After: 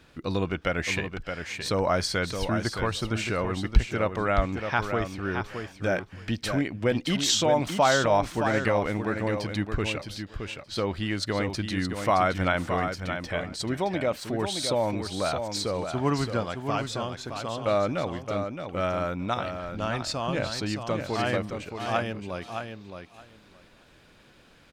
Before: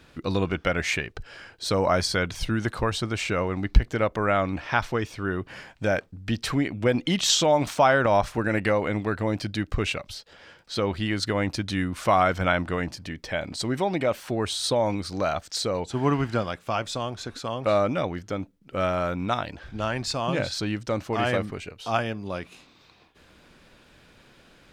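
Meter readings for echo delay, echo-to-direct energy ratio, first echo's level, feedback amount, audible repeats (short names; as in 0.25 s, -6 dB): 0.619 s, -7.0 dB, -7.0 dB, 15%, 2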